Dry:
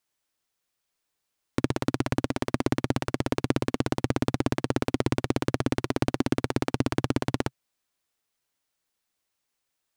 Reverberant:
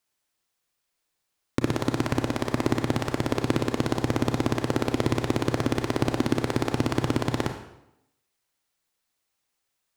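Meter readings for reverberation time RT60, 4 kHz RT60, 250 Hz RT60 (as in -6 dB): 0.85 s, 0.70 s, 0.80 s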